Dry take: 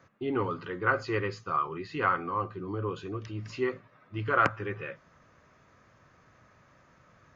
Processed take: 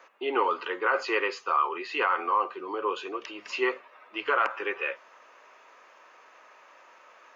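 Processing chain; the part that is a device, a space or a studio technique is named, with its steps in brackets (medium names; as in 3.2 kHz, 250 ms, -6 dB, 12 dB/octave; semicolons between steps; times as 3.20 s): laptop speaker (high-pass 400 Hz 24 dB/octave; peaking EQ 920 Hz +7 dB 0.43 oct; peaking EQ 2.7 kHz +8 dB 0.53 oct; peak limiter -20 dBFS, peak gain reduction 12 dB); trim +5.5 dB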